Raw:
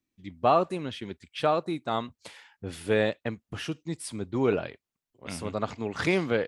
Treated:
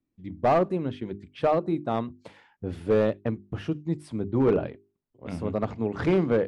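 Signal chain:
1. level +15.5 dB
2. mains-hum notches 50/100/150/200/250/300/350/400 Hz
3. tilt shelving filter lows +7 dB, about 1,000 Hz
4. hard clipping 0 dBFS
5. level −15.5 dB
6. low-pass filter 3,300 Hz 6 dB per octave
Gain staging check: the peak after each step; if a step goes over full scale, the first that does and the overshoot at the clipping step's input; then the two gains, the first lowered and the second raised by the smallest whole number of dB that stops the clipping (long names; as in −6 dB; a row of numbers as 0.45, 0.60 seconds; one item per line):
+5.5, +5.0, +8.0, 0.0, −15.5, −15.5 dBFS
step 1, 8.0 dB
step 1 +7.5 dB, step 5 −7.5 dB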